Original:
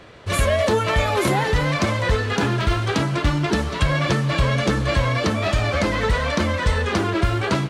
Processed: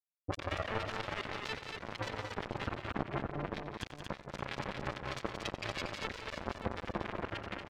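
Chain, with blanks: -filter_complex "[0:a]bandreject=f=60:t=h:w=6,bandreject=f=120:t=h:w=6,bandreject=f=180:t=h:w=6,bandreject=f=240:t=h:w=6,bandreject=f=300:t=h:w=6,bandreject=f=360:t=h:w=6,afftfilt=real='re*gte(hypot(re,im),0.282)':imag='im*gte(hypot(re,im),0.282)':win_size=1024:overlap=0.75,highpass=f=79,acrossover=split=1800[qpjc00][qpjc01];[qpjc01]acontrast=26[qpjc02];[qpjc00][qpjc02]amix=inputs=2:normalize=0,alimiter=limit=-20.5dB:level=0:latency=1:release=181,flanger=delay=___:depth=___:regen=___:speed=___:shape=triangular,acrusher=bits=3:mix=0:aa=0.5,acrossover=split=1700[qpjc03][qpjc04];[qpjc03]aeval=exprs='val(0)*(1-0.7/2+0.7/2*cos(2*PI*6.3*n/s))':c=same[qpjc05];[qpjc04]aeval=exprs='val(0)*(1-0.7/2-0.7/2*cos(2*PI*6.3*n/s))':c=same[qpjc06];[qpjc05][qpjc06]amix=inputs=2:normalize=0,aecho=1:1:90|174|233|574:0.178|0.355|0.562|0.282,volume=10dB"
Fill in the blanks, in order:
8.5, 2.2, -78, 0.34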